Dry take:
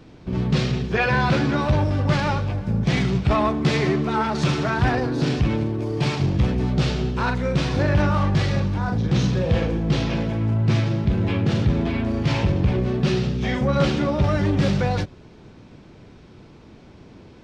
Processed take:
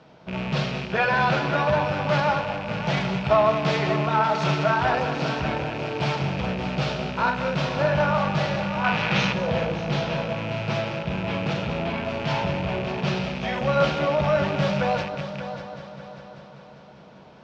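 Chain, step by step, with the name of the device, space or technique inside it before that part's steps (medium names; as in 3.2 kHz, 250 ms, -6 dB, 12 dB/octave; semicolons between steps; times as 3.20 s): multi-head delay 197 ms, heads first and third, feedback 58%, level -11.5 dB; de-hum 50.89 Hz, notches 6; car door speaker with a rattle (rattle on loud lows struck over -26 dBFS, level -22 dBFS; cabinet simulation 100–6600 Hz, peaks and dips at 110 Hz -10 dB, 310 Hz -10 dB, 630 Hz +9 dB, 900 Hz +7 dB, 1.4 kHz +6 dB, 3 kHz +3 dB); 8.84–9.33 s: peaking EQ 2.2 kHz +9.5 dB 2.3 oct; simulated room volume 650 m³, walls furnished, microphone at 0.59 m; trim -4 dB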